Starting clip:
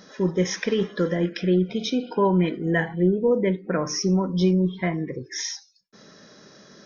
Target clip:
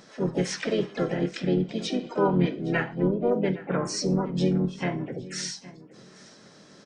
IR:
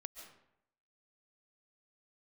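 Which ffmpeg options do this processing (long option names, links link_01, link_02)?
-filter_complex "[0:a]asplit=2[link_01][link_02];[link_02]adelay=813,lowpass=frequency=4600:poles=1,volume=-18dB,asplit=2[link_03][link_04];[link_04]adelay=813,lowpass=frequency=4600:poles=1,volume=0.2[link_05];[link_03][link_05]amix=inputs=2:normalize=0[link_06];[link_01][link_06]amix=inputs=2:normalize=0,flanger=delay=9:depth=5.6:regen=76:speed=0.32:shape=sinusoidal,asplit=4[link_07][link_08][link_09][link_10];[link_08]asetrate=35002,aresample=44100,atempo=1.25992,volume=-7dB[link_11];[link_09]asetrate=55563,aresample=44100,atempo=0.793701,volume=-10dB[link_12];[link_10]asetrate=66075,aresample=44100,atempo=0.66742,volume=-12dB[link_13];[link_07][link_11][link_12][link_13]amix=inputs=4:normalize=0"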